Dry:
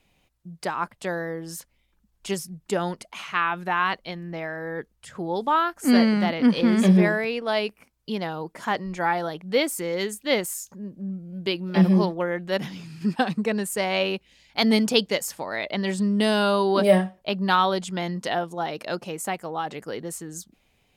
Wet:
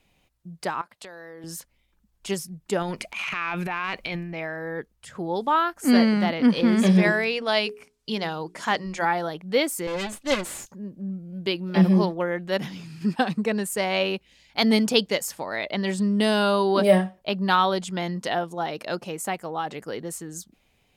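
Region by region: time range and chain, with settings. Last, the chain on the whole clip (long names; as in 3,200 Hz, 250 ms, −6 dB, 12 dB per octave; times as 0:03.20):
0:00.81–0:01.44: high-pass filter 470 Hz 6 dB per octave + parametric band 4,200 Hz +5.5 dB 0.37 octaves + downward compressor 16 to 1, threshold −37 dBFS
0:02.82–0:04.41: parametric band 2,400 Hz +13.5 dB 0.29 octaves + transient designer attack −6 dB, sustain +11 dB + downward compressor 3 to 1, threshold −25 dBFS
0:06.86–0:09.05: low-pass filter 8,800 Hz + high-shelf EQ 2,400 Hz +8.5 dB + mains-hum notches 60/120/180/240/300/360/420 Hz
0:09.87–0:10.66: lower of the sound and its delayed copy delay 3.5 ms + low-pass filter 11,000 Hz
whole clip: no processing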